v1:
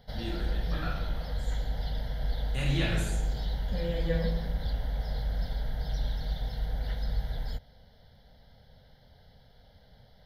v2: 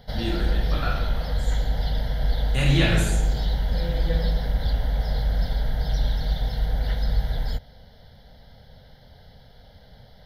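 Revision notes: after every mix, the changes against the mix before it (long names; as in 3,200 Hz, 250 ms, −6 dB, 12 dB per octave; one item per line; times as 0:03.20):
first voice +9.0 dB
background +8.0 dB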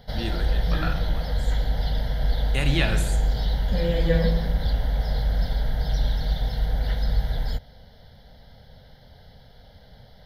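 first voice: send −8.5 dB
second voice +8.0 dB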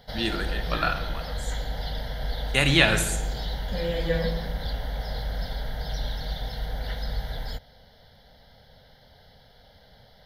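first voice +7.5 dB
master: add low-shelf EQ 320 Hz −8 dB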